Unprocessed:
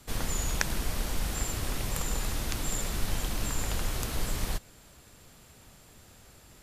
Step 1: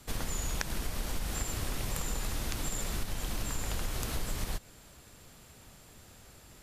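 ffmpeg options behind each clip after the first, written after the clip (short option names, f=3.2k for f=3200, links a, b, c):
-af "acompressor=threshold=-29dB:ratio=6"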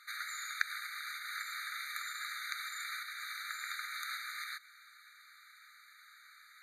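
-af "highshelf=f=4.5k:t=q:w=1.5:g=-9.5,afftfilt=real='re*eq(mod(floor(b*sr/1024/1200),2),1)':imag='im*eq(mod(floor(b*sr/1024/1200),2),1)':win_size=1024:overlap=0.75,volume=5dB"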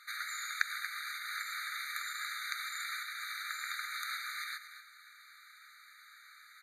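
-af "aecho=1:1:233:0.266,volume=1.5dB"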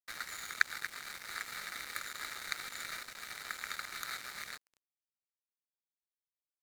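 -af "aeval=exprs='sgn(val(0))*max(abs(val(0))-0.00891,0)':c=same,volume=4dB"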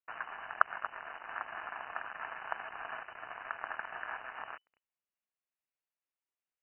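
-af "lowpass=f=2.6k:t=q:w=0.5098,lowpass=f=2.6k:t=q:w=0.6013,lowpass=f=2.6k:t=q:w=0.9,lowpass=f=2.6k:t=q:w=2.563,afreqshift=-3000,volume=2.5dB"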